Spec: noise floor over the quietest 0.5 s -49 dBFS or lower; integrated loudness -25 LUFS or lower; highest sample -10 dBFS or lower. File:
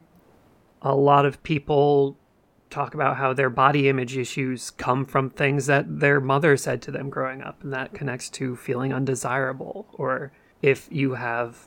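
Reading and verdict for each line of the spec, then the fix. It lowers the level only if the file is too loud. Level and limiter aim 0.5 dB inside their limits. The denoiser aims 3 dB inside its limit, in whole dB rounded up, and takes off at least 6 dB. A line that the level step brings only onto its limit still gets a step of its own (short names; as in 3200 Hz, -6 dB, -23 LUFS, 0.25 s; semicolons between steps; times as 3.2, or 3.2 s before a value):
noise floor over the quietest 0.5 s -61 dBFS: OK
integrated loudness -23.5 LUFS: fail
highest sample -2.5 dBFS: fail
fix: gain -2 dB; limiter -10.5 dBFS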